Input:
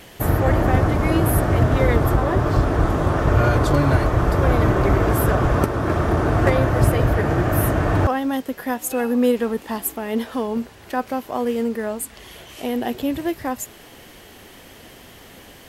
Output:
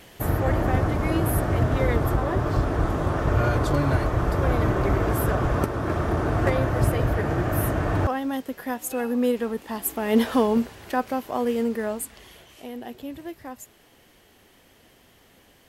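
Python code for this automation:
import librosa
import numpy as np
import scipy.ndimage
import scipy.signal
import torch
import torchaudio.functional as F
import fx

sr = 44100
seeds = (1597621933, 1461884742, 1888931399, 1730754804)

y = fx.gain(x, sr, db=fx.line((9.73, -5.0), (10.25, 5.5), (11.09, -2.0), (11.92, -2.0), (12.69, -12.5)))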